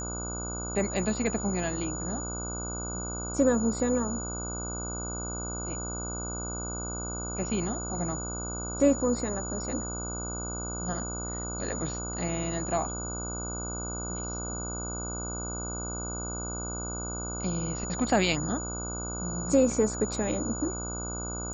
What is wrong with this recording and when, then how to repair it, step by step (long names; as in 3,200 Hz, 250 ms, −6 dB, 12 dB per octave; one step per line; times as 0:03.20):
mains buzz 60 Hz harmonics 25 −37 dBFS
whistle 6,900 Hz −36 dBFS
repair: hum removal 60 Hz, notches 25
notch filter 6,900 Hz, Q 30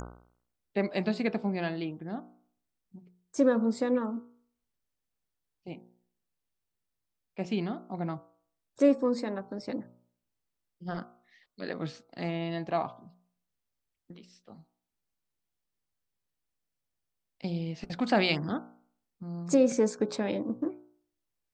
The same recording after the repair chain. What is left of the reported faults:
none of them is left